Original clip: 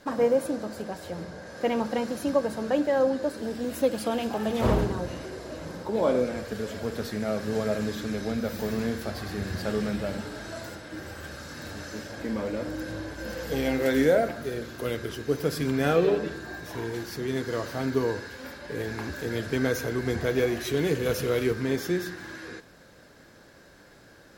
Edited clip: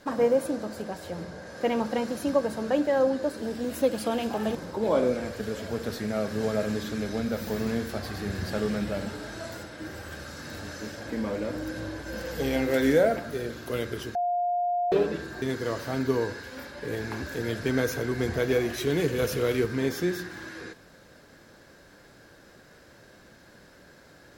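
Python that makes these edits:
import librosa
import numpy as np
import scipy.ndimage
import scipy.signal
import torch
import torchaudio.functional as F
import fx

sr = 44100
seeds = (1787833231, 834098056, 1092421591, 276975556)

y = fx.edit(x, sr, fx.cut(start_s=4.55, length_s=1.12),
    fx.bleep(start_s=15.27, length_s=0.77, hz=707.0, db=-23.5),
    fx.cut(start_s=16.54, length_s=0.75), tone=tone)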